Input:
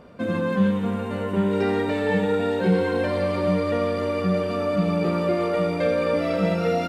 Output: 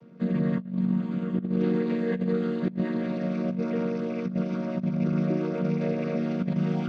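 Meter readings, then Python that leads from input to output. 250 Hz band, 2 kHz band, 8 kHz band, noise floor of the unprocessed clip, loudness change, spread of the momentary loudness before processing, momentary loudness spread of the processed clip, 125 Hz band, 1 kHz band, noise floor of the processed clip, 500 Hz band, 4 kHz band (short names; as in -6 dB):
-1.5 dB, -11.5 dB, n/a, -28 dBFS, -4.5 dB, 3 LU, 3 LU, -2.0 dB, -12.5 dB, -37 dBFS, -9.0 dB, under -10 dB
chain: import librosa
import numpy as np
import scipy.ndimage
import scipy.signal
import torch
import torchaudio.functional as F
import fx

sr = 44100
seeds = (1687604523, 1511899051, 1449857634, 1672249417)

y = fx.chord_vocoder(x, sr, chord='minor triad', root=51)
y = fx.peak_eq(y, sr, hz=790.0, db=-11.0, octaves=1.3)
y = fx.over_compress(y, sr, threshold_db=-25.0, ratio=-0.5)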